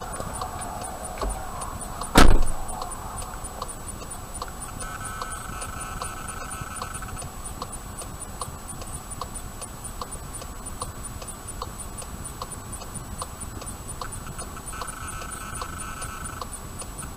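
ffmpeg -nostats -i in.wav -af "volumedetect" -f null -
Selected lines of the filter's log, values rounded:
mean_volume: -26.7 dB
max_volume: -5.6 dB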